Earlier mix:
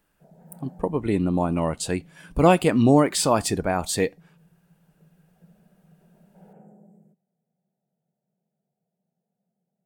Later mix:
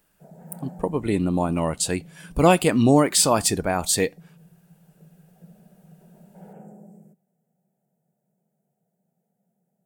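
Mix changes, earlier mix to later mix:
background +6.0 dB
master: add high-shelf EQ 3,800 Hz +8 dB

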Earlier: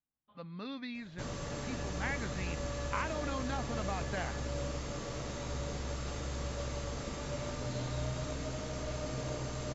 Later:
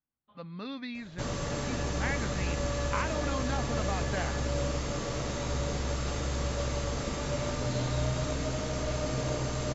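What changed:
speech +3.0 dB
background +6.5 dB

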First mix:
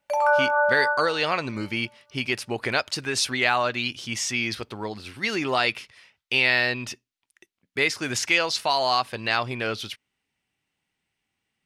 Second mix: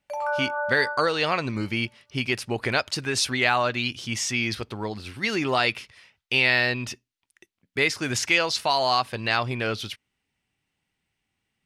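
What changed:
background −7.5 dB
master: add low-shelf EQ 150 Hz +7 dB

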